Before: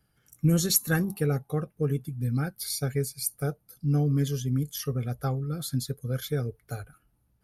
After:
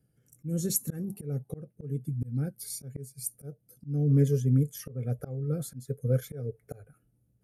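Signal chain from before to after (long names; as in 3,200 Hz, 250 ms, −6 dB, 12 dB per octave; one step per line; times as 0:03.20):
octave-band graphic EQ 125/250/500/1,000/4,000/8,000 Hz +11/+7/+10/−9/−7/+7 dB
volume swells 303 ms
gain on a spectral selection 0:04.09–0:06.99, 390–2,700 Hz +6 dB
level −8.5 dB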